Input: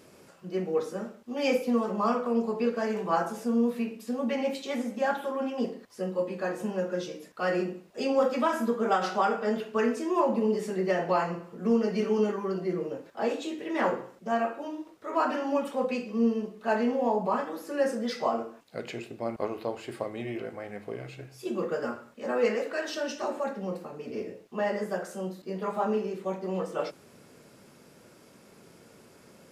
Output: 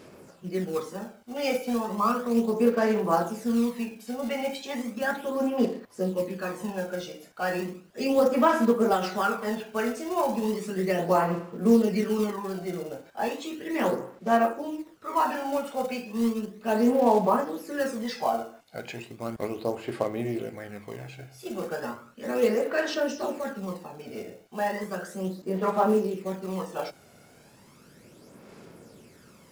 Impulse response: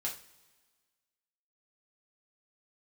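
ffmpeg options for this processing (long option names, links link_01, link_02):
-af "acrusher=bits=5:mode=log:mix=0:aa=0.000001,aphaser=in_gain=1:out_gain=1:delay=1.4:decay=0.5:speed=0.35:type=sinusoidal"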